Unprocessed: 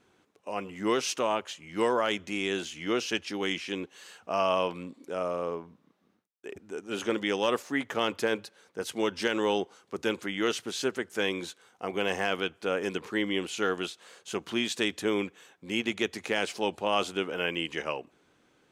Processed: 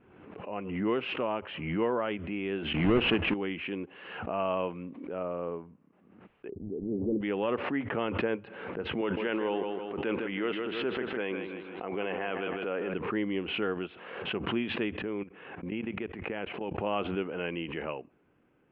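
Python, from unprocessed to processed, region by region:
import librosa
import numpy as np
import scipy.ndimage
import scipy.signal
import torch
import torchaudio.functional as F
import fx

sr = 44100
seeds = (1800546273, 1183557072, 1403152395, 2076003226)

y = fx.chain(x, sr, fx.halfwave_hold(),
    fx.env_flatten(amount_pct=50), at=(2.74, 3.34))
y = fx.chain(y, sr, fx.leveller(passes=2),
    fx.gaussian_blur(sigma=19.0), at=(6.49, 7.21))
y = fx.chain(y, sr, fx.highpass(hz=340.0, slope=6),
    fx.echo_feedback(ms=157, feedback_pct=27, wet_db=-9.0),
    fx.sustainer(db_per_s=25.0), at=(9.01, 12.94))
y = fx.chain(y, sr, fx.lowpass(hz=3400.0, slope=12),
    fx.level_steps(step_db=16), at=(15.02, 16.8))
y = scipy.signal.sosfilt(scipy.signal.ellip(4, 1.0, 60, 2800.0, 'lowpass', fs=sr, output='sos'), y)
y = fx.low_shelf(y, sr, hz=500.0, db=9.5)
y = fx.pre_swell(y, sr, db_per_s=51.0)
y = y * 10.0 ** (-7.0 / 20.0)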